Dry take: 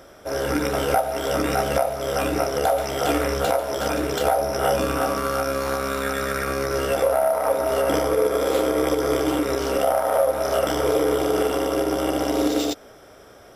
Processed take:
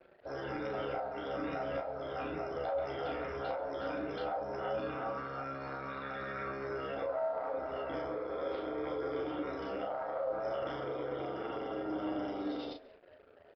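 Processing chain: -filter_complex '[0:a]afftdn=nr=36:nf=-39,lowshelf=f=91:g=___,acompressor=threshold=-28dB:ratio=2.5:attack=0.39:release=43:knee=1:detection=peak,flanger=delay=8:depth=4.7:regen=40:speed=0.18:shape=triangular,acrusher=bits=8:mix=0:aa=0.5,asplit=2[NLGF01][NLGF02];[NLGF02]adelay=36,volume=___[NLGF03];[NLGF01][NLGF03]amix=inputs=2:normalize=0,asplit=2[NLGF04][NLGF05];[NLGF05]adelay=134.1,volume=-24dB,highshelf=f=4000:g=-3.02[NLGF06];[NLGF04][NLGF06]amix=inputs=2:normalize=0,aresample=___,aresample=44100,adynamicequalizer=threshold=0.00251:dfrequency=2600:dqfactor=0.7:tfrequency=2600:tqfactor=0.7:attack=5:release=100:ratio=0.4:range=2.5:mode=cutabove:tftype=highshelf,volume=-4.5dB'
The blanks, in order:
-3.5, -5.5dB, 11025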